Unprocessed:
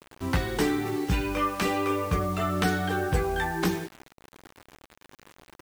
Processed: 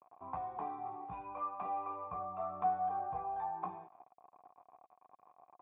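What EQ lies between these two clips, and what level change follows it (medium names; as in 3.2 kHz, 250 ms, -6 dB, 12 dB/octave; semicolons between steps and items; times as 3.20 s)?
high-pass 95 Hz 12 dB/octave; dynamic bell 400 Hz, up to -6 dB, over -39 dBFS, Q 0.87; cascade formant filter a; +4.0 dB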